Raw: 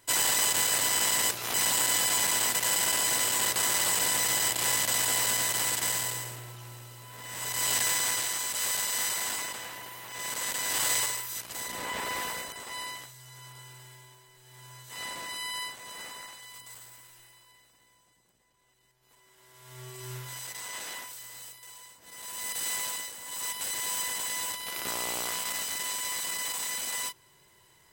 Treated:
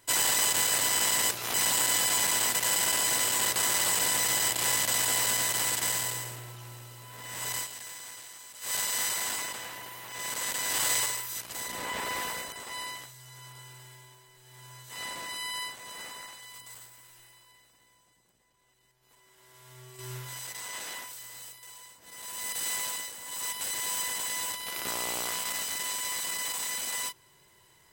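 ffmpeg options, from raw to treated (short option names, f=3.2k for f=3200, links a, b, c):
-filter_complex "[0:a]asettb=1/sr,asplit=3[a][b][c];[a]atrim=end=16.864[d];[b]atrim=start=16.86:end=19.99,asetpts=PTS-STARTPTS,afade=t=in:d=0.004:c=qsin,afade=t=out:st=3.126:d=0.004:c=qsin,acompressor=threshold=-50dB:ratio=2:attack=3.2:release=140:knee=1:detection=peak[e];[c]atrim=start=19.986[f];[d][e]acrossfade=d=0.004:c1=hsin:c2=qsin[g];[g][f]acrossfade=d=0.004:c1=qsin:c2=hsin,asplit=3[h][i][j];[h]atrim=end=7.68,asetpts=PTS-STARTPTS,afade=t=out:st=7.54:d=0.14:silence=0.16788[k];[i]atrim=start=7.68:end=8.61,asetpts=PTS-STARTPTS,volume=-15.5dB[l];[j]atrim=start=8.61,asetpts=PTS-STARTPTS,afade=t=in:d=0.14:silence=0.16788[m];[k][l][m]concat=n=3:v=0:a=1"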